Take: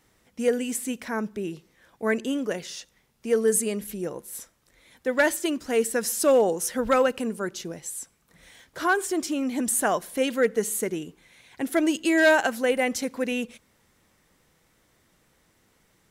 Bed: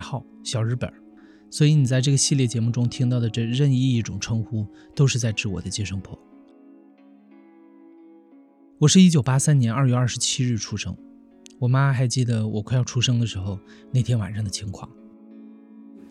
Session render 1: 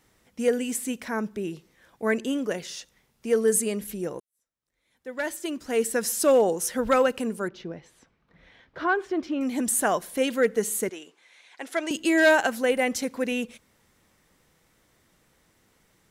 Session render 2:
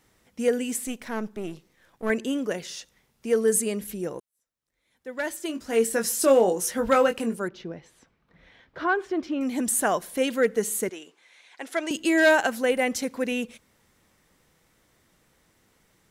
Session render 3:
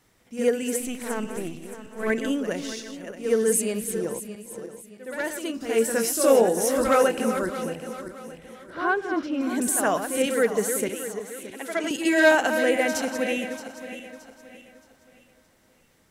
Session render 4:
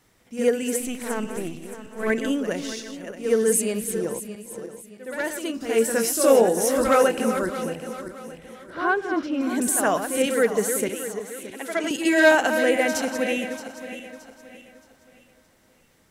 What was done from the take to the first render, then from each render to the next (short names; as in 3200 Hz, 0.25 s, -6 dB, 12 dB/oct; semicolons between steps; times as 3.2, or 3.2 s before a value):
4.2–5.9 fade in quadratic; 7.48–9.41 air absorption 280 m; 10.89–11.91 BPF 600–7700 Hz
0.87–2.1 half-wave gain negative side -7 dB; 5.47–7.35 doubler 22 ms -6.5 dB
regenerating reverse delay 0.311 s, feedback 58%, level -9 dB; reverse echo 67 ms -8 dB
gain +1.5 dB